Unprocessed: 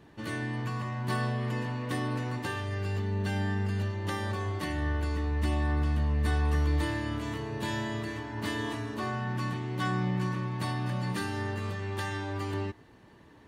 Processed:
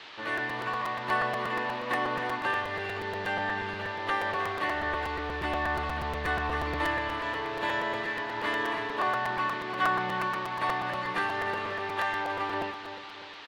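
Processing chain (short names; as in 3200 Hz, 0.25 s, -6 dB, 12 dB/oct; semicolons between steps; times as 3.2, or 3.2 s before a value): three-band isolator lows -22 dB, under 460 Hz, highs -21 dB, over 2900 Hz; on a send: feedback echo 0.312 s, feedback 46%, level -10 dB; on the sum: band noise 850–4000 Hz -56 dBFS; crackling interface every 0.12 s, samples 256, repeat, from 0.37; gain +8.5 dB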